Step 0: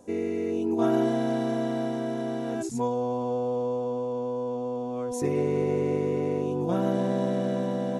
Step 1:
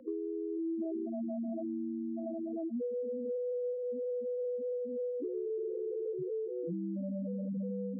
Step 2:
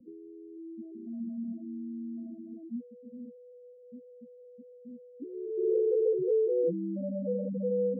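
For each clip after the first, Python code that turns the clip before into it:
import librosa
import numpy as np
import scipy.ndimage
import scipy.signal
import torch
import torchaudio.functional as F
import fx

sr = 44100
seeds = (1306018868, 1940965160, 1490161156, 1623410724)

y1 = x + 10.0 ** (-13.0 / 20.0) * np.pad(x, (int(836 * sr / 1000.0), 0))[:len(x)]
y1 = fx.spec_topn(y1, sr, count=2)
y1 = fx.band_squash(y1, sr, depth_pct=100)
y1 = y1 * 10.0 ** (-4.5 / 20.0)
y2 = fx.filter_sweep_lowpass(y1, sr, from_hz=170.0, to_hz=500.0, start_s=5.1, end_s=5.84, q=4.3)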